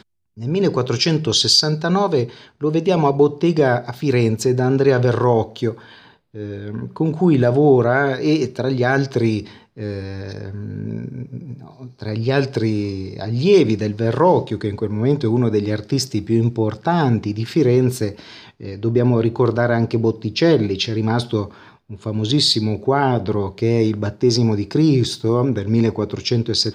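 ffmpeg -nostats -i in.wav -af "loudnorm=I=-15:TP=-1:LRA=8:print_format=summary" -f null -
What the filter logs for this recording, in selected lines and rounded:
Input Integrated:    -18.3 LUFS
Input True Peak:      -2.8 dBTP
Input LRA:             2.8 LU
Input Threshold:     -28.9 LUFS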